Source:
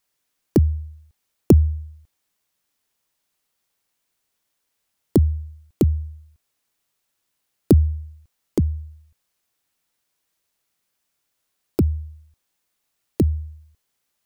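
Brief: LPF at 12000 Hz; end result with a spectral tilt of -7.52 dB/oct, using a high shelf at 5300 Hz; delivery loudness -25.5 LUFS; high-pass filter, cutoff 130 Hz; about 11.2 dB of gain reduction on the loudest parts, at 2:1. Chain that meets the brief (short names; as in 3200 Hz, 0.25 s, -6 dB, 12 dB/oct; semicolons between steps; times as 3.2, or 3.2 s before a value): HPF 130 Hz; LPF 12000 Hz; high shelf 5300 Hz +8 dB; compressor 2:1, threshold -30 dBFS; gain +8.5 dB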